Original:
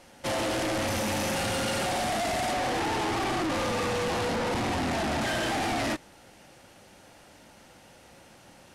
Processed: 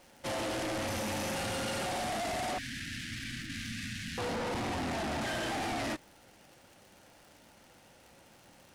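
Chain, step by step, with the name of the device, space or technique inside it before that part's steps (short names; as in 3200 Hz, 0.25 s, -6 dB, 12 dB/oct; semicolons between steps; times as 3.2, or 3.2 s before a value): 2.58–4.18 Chebyshev band-stop 260–1600 Hz, order 4; vinyl LP (crackle 130/s -41 dBFS; white noise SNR 42 dB); gain -6 dB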